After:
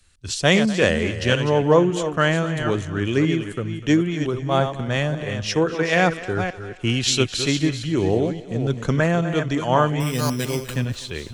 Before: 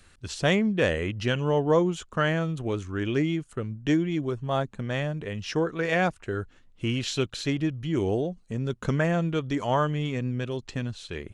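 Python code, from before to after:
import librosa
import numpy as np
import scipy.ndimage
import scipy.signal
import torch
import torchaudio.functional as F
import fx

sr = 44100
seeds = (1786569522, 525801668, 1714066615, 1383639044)

p1 = fx.reverse_delay(x, sr, ms=271, wet_db=-7.5)
p2 = fx.resample_bad(p1, sr, factor=8, down='none', up='hold', at=(10.0, 10.76))
p3 = fx.rider(p2, sr, range_db=3, speed_s=0.5)
p4 = p2 + (p3 * librosa.db_to_amplitude(-1.5))
p5 = fx.peak_eq(p4, sr, hz=7900.0, db=4.5, octaves=2.4)
p6 = p5 + fx.echo_thinned(p5, sr, ms=250, feedback_pct=57, hz=390.0, wet_db=-14.0, dry=0)
y = fx.band_widen(p6, sr, depth_pct=40)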